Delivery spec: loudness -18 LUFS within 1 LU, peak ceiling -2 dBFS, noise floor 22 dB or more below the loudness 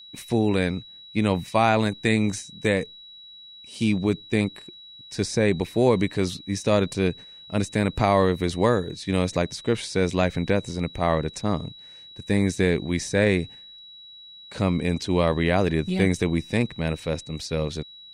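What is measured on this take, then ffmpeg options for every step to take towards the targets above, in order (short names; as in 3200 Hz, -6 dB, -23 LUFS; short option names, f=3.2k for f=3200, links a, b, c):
steady tone 3900 Hz; tone level -43 dBFS; loudness -24.5 LUFS; peak -7.0 dBFS; loudness target -18.0 LUFS
-> -af "bandreject=f=3.9k:w=30"
-af "volume=6.5dB,alimiter=limit=-2dB:level=0:latency=1"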